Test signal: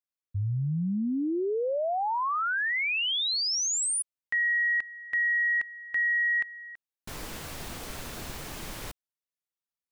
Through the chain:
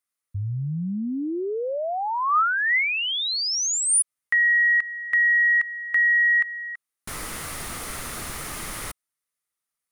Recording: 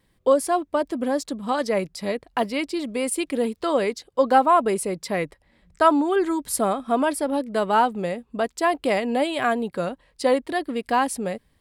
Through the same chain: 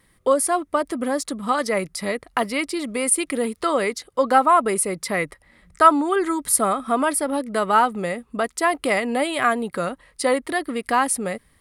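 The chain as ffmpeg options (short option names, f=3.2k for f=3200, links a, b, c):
-filter_complex "[0:a]equalizer=f=9.2k:w=1.4:g=13.5,asplit=2[a][b];[b]acompressor=threshold=-35dB:ratio=6:attack=18:release=111:knee=6:detection=peak,volume=-1dB[c];[a][c]amix=inputs=2:normalize=0,equalizer=f=1.25k:t=o:w=0.33:g=9,equalizer=f=2k:t=o:w=0.33:g=7,equalizer=f=8k:t=o:w=0.33:g=-6,volume=-2dB"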